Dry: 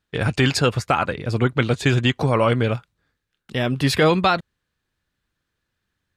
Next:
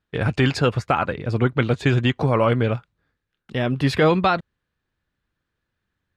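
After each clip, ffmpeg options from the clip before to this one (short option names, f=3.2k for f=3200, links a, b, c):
-af "lowpass=f=2.5k:p=1"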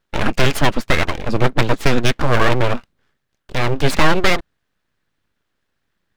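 -af "aeval=exprs='abs(val(0))':c=same,volume=7dB"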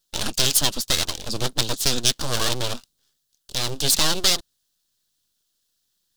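-af "aexciter=amount=8.8:drive=7.3:freq=3.3k,volume=-11.5dB"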